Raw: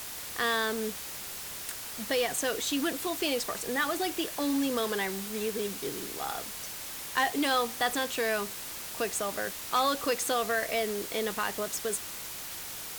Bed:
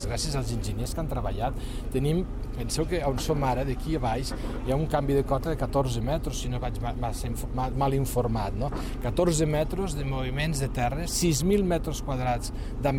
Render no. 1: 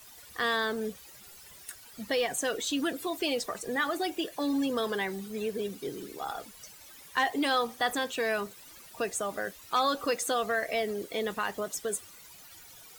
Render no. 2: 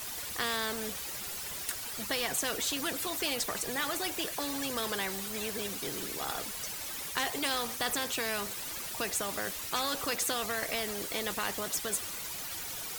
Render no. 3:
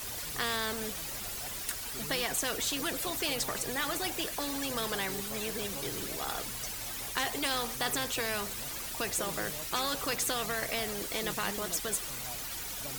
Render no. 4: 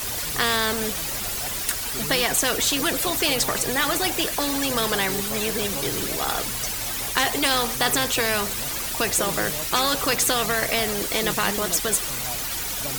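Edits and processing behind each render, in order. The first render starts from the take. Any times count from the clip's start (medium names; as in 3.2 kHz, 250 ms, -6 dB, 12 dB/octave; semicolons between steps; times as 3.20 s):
noise reduction 15 dB, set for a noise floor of -40 dBFS
spectrum-flattening compressor 2:1
add bed -21 dB
trim +10.5 dB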